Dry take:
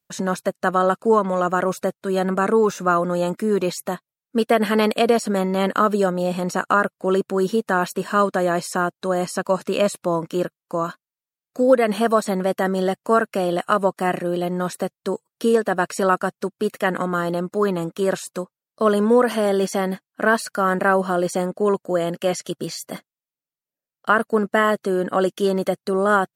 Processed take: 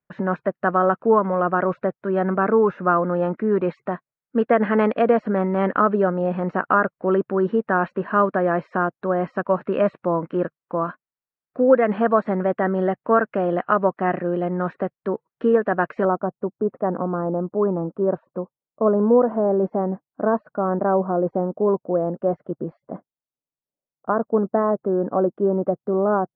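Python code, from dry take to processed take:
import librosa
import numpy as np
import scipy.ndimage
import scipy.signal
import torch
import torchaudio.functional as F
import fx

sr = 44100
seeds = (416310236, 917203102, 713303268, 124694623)

y = fx.lowpass(x, sr, hz=fx.steps((0.0, 2000.0), (16.05, 1000.0)), slope=24)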